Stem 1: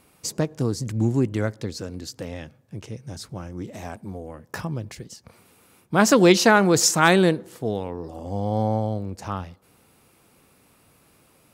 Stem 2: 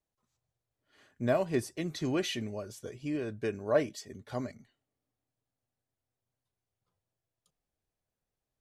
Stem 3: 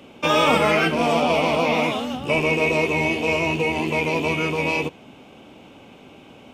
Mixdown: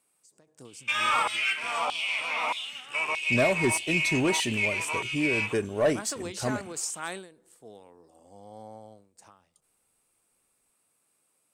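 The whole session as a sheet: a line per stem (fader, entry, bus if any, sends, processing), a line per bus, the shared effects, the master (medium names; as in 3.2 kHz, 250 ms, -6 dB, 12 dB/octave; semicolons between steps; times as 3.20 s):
-17.5 dB, 0.00 s, no send, high-pass 470 Hz 6 dB/octave; endings held to a fixed fall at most 110 dB/s
+2.5 dB, 2.10 s, no send, waveshaping leveller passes 1
-6.5 dB, 0.65 s, no send, tone controls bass +13 dB, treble -7 dB; LFO high-pass saw down 1.6 Hz 960–3800 Hz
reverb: none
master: peaking EQ 8.5 kHz +14.5 dB 0.49 oct; saturation -15.5 dBFS, distortion -19 dB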